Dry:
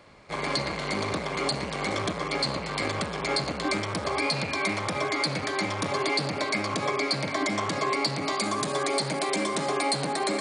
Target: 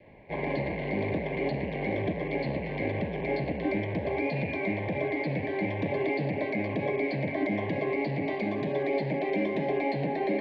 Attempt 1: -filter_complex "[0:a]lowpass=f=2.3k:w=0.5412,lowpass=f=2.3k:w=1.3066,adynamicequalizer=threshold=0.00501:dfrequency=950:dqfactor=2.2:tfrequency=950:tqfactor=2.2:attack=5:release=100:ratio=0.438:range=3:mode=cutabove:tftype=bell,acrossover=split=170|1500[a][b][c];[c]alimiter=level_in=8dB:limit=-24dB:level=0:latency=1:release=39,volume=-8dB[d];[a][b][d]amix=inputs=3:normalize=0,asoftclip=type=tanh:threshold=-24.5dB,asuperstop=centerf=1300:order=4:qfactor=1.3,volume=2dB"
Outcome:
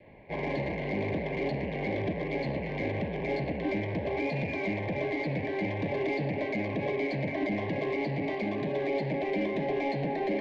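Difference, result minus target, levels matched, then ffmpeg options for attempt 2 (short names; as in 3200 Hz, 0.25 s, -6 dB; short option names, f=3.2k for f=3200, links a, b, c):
soft clip: distortion +15 dB
-filter_complex "[0:a]lowpass=f=2.3k:w=0.5412,lowpass=f=2.3k:w=1.3066,adynamicequalizer=threshold=0.00501:dfrequency=950:dqfactor=2.2:tfrequency=950:tqfactor=2.2:attack=5:release=100:ratio=0.438:range=3:mode=cutabove:tftype=bell,acrossover=split=170|1500[a][b][c];[c]alimiter=level_in=8dB:limit=-24dB:level=0:latency=1:release=39,volume=-8dB[d];[a][b][d]amix=inputs=3:normalize=0,asoftclip=type=tanh:threshold=-15.5dB,asuperstop=centerf=1300:order=4:qfactor=1.3,volume=2dB"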